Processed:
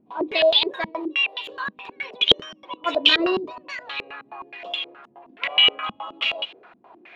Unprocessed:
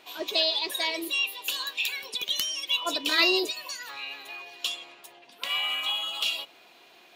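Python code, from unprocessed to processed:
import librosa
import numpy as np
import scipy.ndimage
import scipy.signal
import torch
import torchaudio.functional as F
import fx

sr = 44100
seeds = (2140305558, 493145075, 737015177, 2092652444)

y = fx.low_shelf(x, sr, hz=180.0, db=-10.5, at=(0.89, 1.63))
y = fx.filter_held_lowpass(y, sr, hz=9.5, low_hz=210.0, high_hz=3100.0)
y = F.gain(torch.from_numpy(y), 4.5).numpy()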